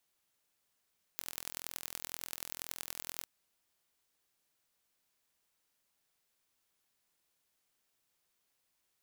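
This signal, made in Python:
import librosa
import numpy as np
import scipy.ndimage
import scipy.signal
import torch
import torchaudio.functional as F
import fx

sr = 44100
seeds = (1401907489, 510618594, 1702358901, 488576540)

y = fx.impulse_train(sr, length_s=2.07, per_s=42.0, accent_every=4, level_db=-10.5)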